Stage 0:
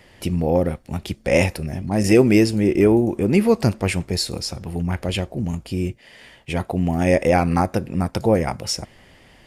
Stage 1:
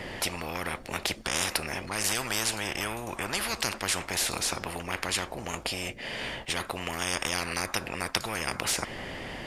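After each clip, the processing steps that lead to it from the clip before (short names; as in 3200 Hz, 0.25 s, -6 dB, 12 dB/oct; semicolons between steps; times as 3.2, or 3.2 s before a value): high shelf 4600 Hz -8.5 dB; spectral compressor 10:1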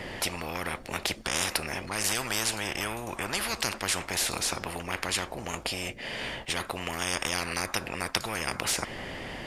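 nothing audible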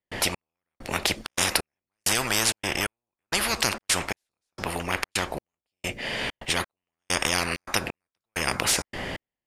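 step gate ".xx....xxxx" 131 bpm -60 dB; gain +5.5 dB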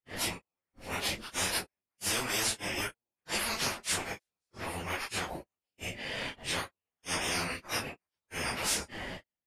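phase scrambler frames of 0.1 s; gain -7 dB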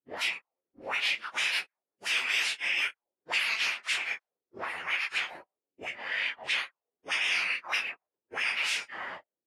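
sine folder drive 4 dB, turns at -17.5 dBFS; auto-wah 280–2500 Hz, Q 2.7, up, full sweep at -25 dBFS; gain +3.5 dB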